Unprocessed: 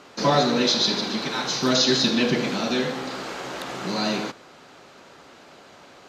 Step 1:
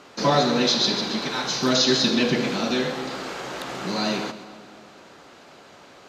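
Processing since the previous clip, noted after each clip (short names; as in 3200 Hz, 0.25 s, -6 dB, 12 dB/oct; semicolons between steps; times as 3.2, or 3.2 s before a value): split-band echo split 1300 Hz, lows 0.236 s, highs 0.133 s, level -15 dB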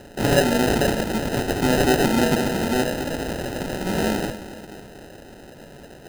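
in parallel at -1 dB: compressor, threshold -30 dBFS, peak gain reduction 14.5 dB; on the sum: sample-and-hold 39×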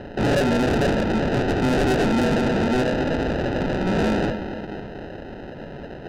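air absorption 300 m; soft clip -25 dBFS, distortion -7 dB; gain +8 dB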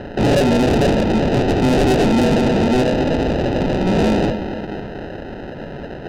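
dynamic EQ 1500 Hz, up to -7 dB, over -42 dBFS, Q 2.3; gain +5.5 dB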